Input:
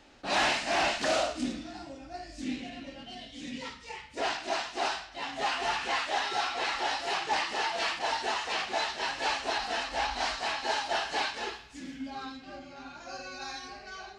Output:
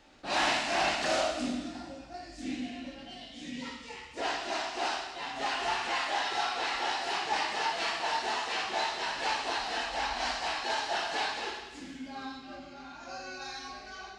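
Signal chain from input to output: plate-style reverb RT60 1.2 s, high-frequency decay 1×, DRR 2 dB; gain -3 dB

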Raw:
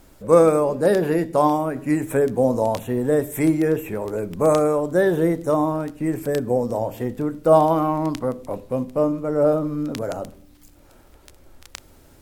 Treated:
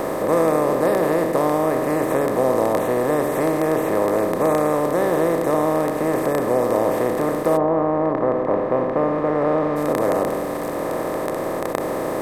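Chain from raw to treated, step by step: per-bin compression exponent 0.2; 7.56–9.75 LPF 1200 Hz -> 3200 Hz 12 dB/oct; gain -9 dB

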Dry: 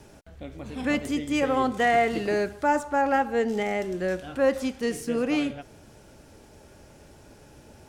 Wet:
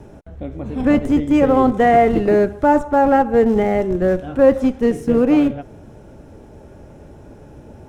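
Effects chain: notch 4600 Hz, Q 9.9; in parallel at -10 dB: Schmitt trigger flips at -24 dBFS; on the sum: tilt shelf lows +8.5 dB, about 1500 Hz; gain +3 dB

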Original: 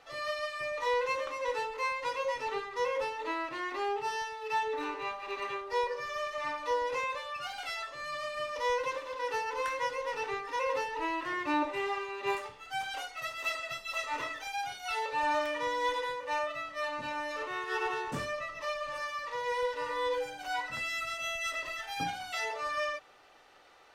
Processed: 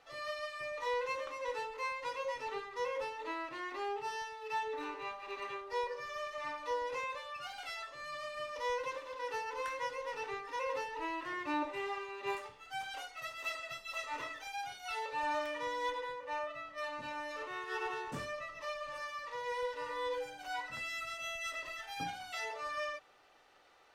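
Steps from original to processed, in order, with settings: 15.9–16.78 high shelf 3700 Hz -8 dB; gain -5.5 dB

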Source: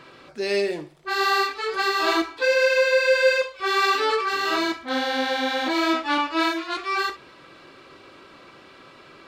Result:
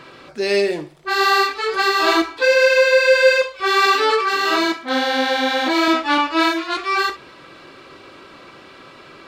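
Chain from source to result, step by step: 3.86–5.88 HPF 150 Hz 12 dB/oct; gain +5.5 dB

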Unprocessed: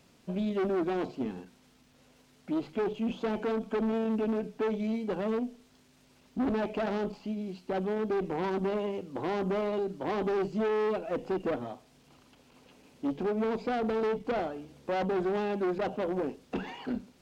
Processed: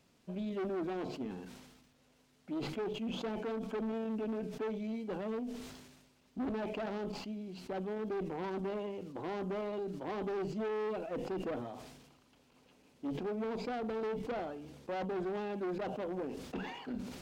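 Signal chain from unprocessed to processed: sustainer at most 45 dB/s; gain -7.5 dB

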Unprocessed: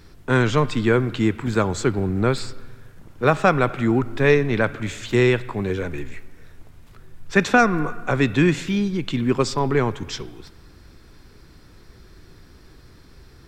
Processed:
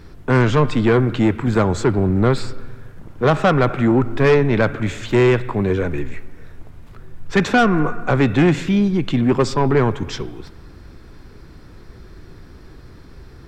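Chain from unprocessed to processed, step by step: high shelf 2500 Hz -9 dB; soft clip -15 dBFS, distortion -12 dB; gain +7 dB

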